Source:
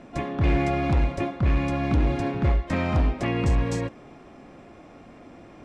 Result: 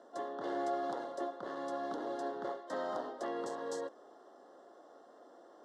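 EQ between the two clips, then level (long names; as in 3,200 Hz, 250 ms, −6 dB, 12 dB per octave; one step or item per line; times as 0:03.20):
four-pole ladder high-pass 360 Hz, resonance 30%
Butterworth band-reject 2,400 Hz, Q 1.5
−2.5 dB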